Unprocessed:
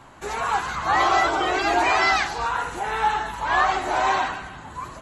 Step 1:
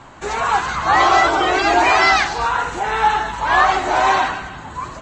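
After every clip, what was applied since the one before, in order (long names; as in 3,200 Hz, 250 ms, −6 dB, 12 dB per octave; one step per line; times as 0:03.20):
Butterworth low-pass 8,100 Hz 36 dB per octave
level +6 dB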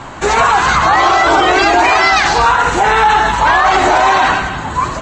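boost into a limiter +13 dB
level −1 dB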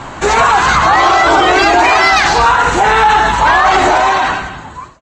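fade-out on the ending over 1.20 s
in parallel at −6.5 dB: soft clipping −10.5 dBFS, distortion −12 dB
on the sum: level −1 dB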